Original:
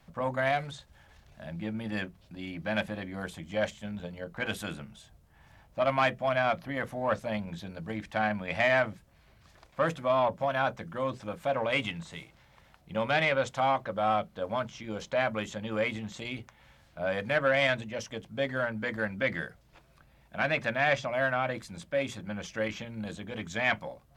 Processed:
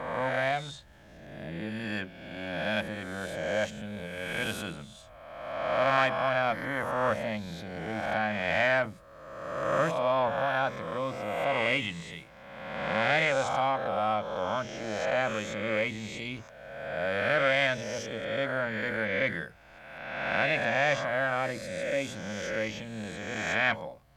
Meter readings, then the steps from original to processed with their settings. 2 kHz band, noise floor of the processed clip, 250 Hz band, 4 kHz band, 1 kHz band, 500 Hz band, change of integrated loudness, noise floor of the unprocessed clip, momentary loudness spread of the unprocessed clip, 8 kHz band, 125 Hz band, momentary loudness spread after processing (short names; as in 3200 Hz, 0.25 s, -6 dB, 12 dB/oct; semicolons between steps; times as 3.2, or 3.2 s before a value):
+2.5 dB, -51 dBFS, -0.5 dB, +2.0 dB, +1.0 dB, +1.0 dB, +1.0 dB, -61 dBFS, 13 LU, +4.0 dB, -0.5 dB, 15 LU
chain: spectral swells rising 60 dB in 1.48 s; gain -2.5 dB